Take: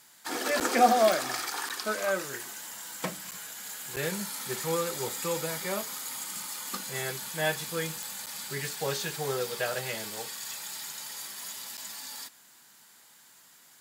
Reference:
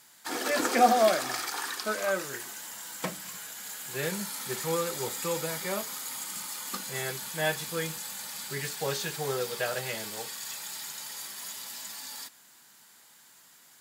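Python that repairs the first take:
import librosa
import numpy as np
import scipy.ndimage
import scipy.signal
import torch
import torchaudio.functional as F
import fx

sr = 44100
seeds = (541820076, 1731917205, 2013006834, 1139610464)

y = fx.fix_declick_ar(x, sr, threshold=10.0)
y = fx.fix_interpolate(y, sr, at_s=(0.6, 1.69, 3.31, 3.96, 8.26, 11.77), length_ms=7.8)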